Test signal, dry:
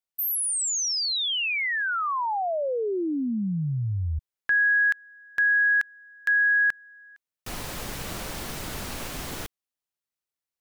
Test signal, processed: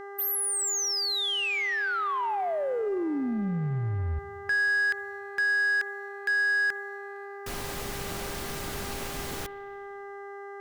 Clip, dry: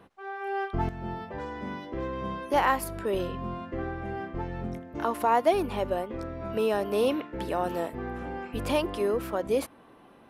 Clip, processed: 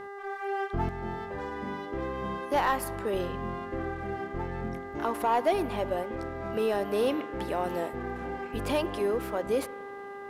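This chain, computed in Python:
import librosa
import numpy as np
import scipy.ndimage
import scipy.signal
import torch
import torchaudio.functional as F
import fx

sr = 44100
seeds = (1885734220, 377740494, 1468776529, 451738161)

y = fx.rev_spring(x, sr, rt60_s=2.1, pass_ms=(45, 51, 58), chirp_ms=40, drr_db=18.0)
y = fx.dmg_buzz(y, sr, base_hz=400.0, harmonics=5, level_db=-40.0, tilt_db=-5, odd_only=False)
y = fx.leveller(y, sr, passes=1)
y = y * librosa.db_to_amplitude(-5.0)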